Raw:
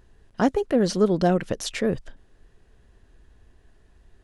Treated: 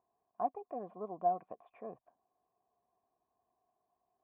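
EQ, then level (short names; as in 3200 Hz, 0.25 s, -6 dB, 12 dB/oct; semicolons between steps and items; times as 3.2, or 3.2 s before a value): vocal tract filter a; speaker cabinet 180–3200 Hz, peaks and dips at 540 Hz -4 dB, 850 Hz -6 dB, 1300 Hz -5 dB; +1.0 dB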